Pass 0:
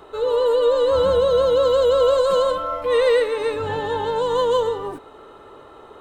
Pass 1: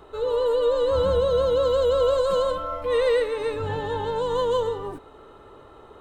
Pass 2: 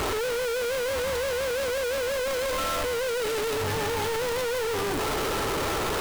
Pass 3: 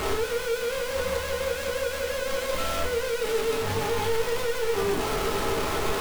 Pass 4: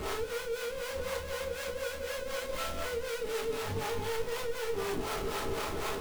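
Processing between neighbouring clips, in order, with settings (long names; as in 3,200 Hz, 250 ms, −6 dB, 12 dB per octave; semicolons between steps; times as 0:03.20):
low-shelf EQ 150 Hz +10 dB; level −5 dB
sign of each sample alone; level −4 dB
rectangular room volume 200 cubic metres, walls furnished, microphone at 1.4 metres; level −3 dB
two-band tremolo in antiphase 4 Hz, depth 70%, crossover 500 Hz; level −4.5 dB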